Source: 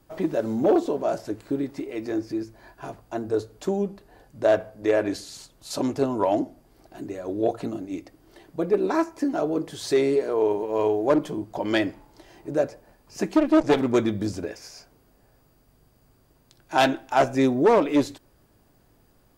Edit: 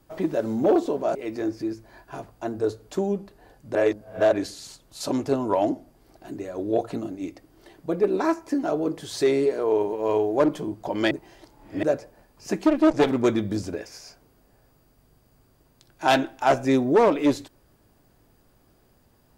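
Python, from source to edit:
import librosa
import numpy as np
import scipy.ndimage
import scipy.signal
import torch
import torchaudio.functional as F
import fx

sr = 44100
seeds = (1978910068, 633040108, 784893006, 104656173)

y = fx.edit(x, sr, fx.cut(start_s=1.15, length_s=0.7),
    fx.reverse_span(start_s=4.45, length_s=0.57),
    fx.reverse_span(start_s=11.81, length_s=0.72), tone=tone)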